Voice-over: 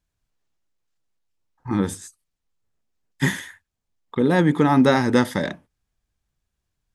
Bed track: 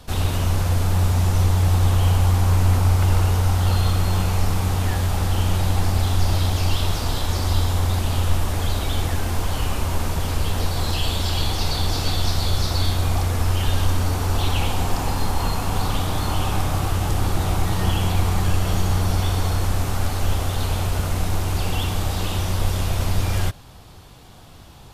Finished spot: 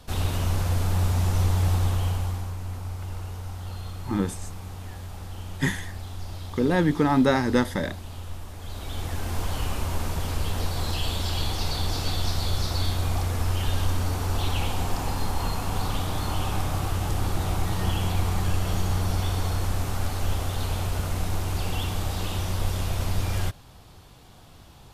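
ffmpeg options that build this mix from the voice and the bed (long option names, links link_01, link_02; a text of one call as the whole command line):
ffmpeg -i stem1.wav -i stem2.wav -filter_complex "[0:a]adelay=2400,volume=-4dB[link_01];[1:a]volume=7dB,afade=type=out:start_time=1.67:duration=0.87:silence=0.251189,afade=type=in:start_time=8.6:duration=0.82:silence=0.266073[link_02];[link_01][link_02]amix=inputs=2:normalize=0" out.wav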